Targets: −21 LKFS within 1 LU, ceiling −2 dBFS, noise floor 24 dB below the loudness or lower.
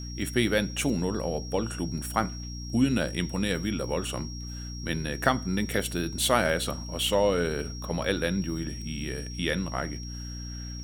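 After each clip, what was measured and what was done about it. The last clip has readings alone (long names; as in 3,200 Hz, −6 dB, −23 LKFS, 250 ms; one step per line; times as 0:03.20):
mains hum 60 Hz; hum harmonics up to 300 Hz; level of the hum −35 dBFS; interfering tone 5,600 Hz; level of the tone −42 dBFS; integrated loudness −29.0 LKFS; sample peak −6.0 dBFS; target loudness −21.0 LKFS
→ hum removal 60 Hz, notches 5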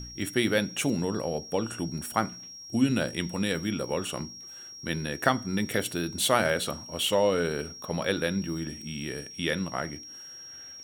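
mains hum none found; interfering tone 5,600 Hz; level of the tone −42 dBFS
→ notch filter 5,600 Hz, Q 30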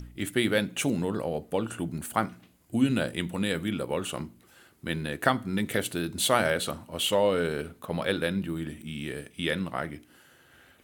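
interfering tone none found; integrated loudness −29.0 LKFS; sample peak −6.5 dBFS; target loudness −21.0 LKFS
→ level +8 dB
brickwall limiter −2 dBFS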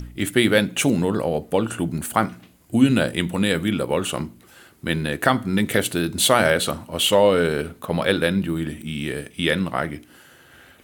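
integrated loudness −21.5 LKFS; sample peak −2.0 dBFS; background noise floor −52 dBFS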